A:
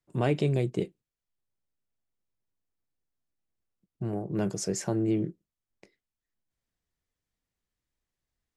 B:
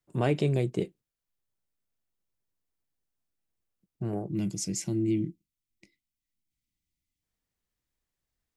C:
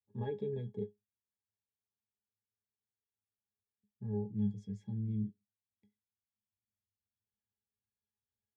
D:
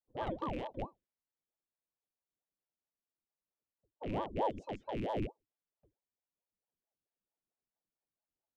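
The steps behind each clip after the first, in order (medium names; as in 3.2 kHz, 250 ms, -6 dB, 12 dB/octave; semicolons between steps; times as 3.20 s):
time-frequency box 4.28–7.23 s, 350–1900 Hz -15 dB; treble shelf 10 kHz +4 dB
pitch-class resonator G#, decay 0.16 s
rattle on loud lows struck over -39 dBFS, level -39 dBFS; level-controlled noise filter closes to 1.1 kHz, open at -33 dBFS; ring modulator with a swept carrier 430 Hz, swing 80%, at 4.5 Hz; trim +2.5 dB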